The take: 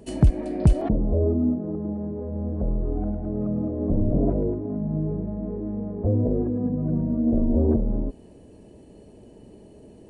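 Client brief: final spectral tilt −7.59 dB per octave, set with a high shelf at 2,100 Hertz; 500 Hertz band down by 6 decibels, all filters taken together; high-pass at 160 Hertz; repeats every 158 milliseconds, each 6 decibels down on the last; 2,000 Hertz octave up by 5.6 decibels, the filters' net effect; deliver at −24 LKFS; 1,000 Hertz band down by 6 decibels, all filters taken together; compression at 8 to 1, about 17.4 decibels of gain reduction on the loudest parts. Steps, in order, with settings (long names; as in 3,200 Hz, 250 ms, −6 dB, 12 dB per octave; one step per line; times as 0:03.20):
high-pass filter 160 Hz
parametric band 500 Hz −7 dB
parametric band 1,000 Hz −7.5 dB
parametric band 2,000 Hz +5 dB
high-shelf EQ 2,100 Hz +8 dB
downward compressor 8 to 1, threshold −36 dBFS
repeating echo 158 ms, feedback 50%, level −6 dB
level +14.5 dB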